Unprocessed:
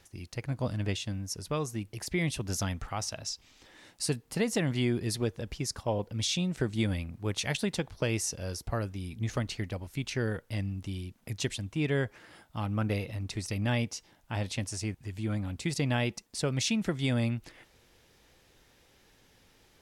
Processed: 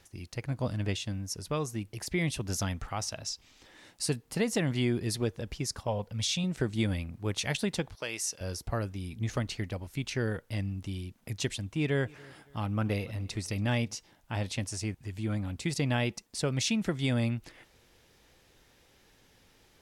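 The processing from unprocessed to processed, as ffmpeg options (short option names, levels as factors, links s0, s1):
-filter_complex "[0:a]asettb=1/sr,asplit=3[s0][s1][s2];[s0]atrim=end=5.874[s3];[s1]atrim=start=5.87:end=6.44,asetpts=PTS-STARTPTS,afade=t=in:d=0.004:c=qsin,afade=t=out:st=0.566:d=0.004:c=qsin,equalizer=f=330:w=3.1:g=-14.5[s4];[s2]atrim=start=6.436[s5];[s3][s4]acrossfade=d=0.004:c1=hsin:c2=qsin[s6];[s6][s5]acrossfade=d=0.004:c1=qsin:c2=hsin,asettb=1/sr,asplit=3[s7][s8][s9];[s7]atrim=end=7.954[s10];[s8]atrim=start=7.95:end=8.41,asetpts=PTS-STARTPTS,afade=t=in:d=0.004:c=qsin,afade=t=out:st=0.456:d=0.004:c=qsin,highpass=f=1100:p=1[s11];[s9]atrim=start=8.406[s12];[s10][s11]acrossfade=d=0.004:c1=hsin:c2=qsin[s13];[s13][s12]acrossfade=d=0.004:c1=qsin:c2=hsin,asettb=1/sr,asplit=3[s14][s15][s16];[s14]atrim=end=11.484[s17];[s15]atrim=start=11.48:end=13.95,asetpts=PTS-STARTPTS,afade=t=in:d=0.004:c=qsin,afade=t=out:st=2.466:d=0.004:c=qsin,aecho=1:1:282|564|846:0.0631|0.0252|0.0101,atrim=end_sample=108927[s18];[s16]atrim=start=13.946[s19];[s17][s18]acrossfade=d=0.004:c1=hsin:c2=qsin[s20];[s20][s19]acrossfade=d=0.004:c1=qsin:c2=hsin"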